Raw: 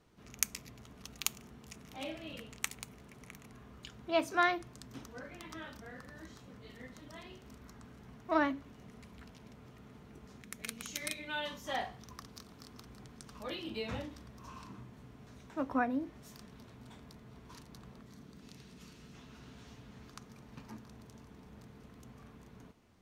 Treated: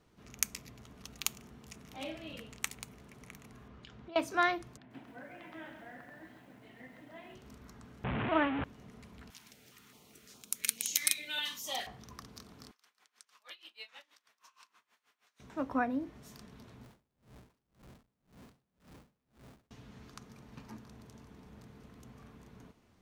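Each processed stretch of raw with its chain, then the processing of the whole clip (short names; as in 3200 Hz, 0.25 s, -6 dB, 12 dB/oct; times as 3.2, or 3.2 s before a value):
3.68–4.16 compressor 16:1, threshold -45 dBFS + LPF 4400 Hz
4.77–7.35 speaker cabinet 170–2800 Hz, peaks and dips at 200 Hz -4 dB, 460 Hz -9 dB, 710 Hz +5 dB, 1200 Hz -9 dB + lo-fi delay 0.133 s, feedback 55%, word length 11-bit, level -6.5 dB
8.04–8.64 delta modulation 16 kbps, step -28 dBFS + HPF 45 Hz
9.3–11.87 HPF 41 Hz + tilt +4 dB/oct + stepped notch 4.8 Hz 520–1900 Hz
12.71–15.4 HPF 1400 Hz + dB-linear tremolo 6.3 Hz, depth 21 dB
16.84–19.71 Schmitt trigger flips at -56 dBFS + dB-linear tremolo 1.9 Hz, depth 32 dB
whole clip: dry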